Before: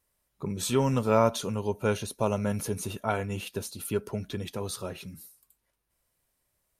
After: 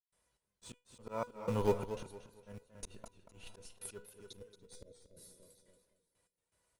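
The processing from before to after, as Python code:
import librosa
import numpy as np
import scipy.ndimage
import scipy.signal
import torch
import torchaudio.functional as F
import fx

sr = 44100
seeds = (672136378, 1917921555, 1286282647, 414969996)

p1 = scipy.signal.sosfilt(scipy.signal.butter(12, 11000.0, 'lowpass', fs=sr, output='sos'), x)
p2 = fx.spec_repair(p1, sr, seeds[0], start_s=4.33, length_s=0.77, low_hz=640.0, high_hz=3300.0, source='after')
p3 = scipy.signal.sosfilt(scipy.signal.butter(2, 46.0, 'highpass', fs=sr, output='sos'), p2)
p4 = fx.peak_eq(p3, sr, hz=830.0, db=2.5, octaves=2.9)
p5 = fx.rev_spring(p4, sr, rt60_s=2.0, pass_ms=(38, 50), chirp_ms=35, drr_db=19.0)
p6 = fx.schmitt(p5, sr, flips_db=-27.5)
p7 = p5 + F.gain(torch.from_numpy(p6), -8.5).numpy()
p8 = fx.step_gate(p7, sr, bpm=122, pattern='.xx..x..xx..xxx', floor_db=-60.0, edge_ms=4.5)
p9 = fx.comb_fb(p8, sr, f0_hz=490.0, decay_s=0.17, harmonics='all', damping=0.0, mix_pct=80)
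p10 = p9 + fx.echo_feedback(p9, sr, ms=287, feedback_pct=47, wet_db=-22.0, dry=0)
p11 = fx.auto_swell(p10, sr, attack_ms=670.0)
p12 = fx.echo_warbled(p11, sr, ms=230, feedback_pct=30, rate_hz=2.8, cents=109, wet_db=-11)
y = F.gain(torch.from_numpy(p12), 9.5).numpy()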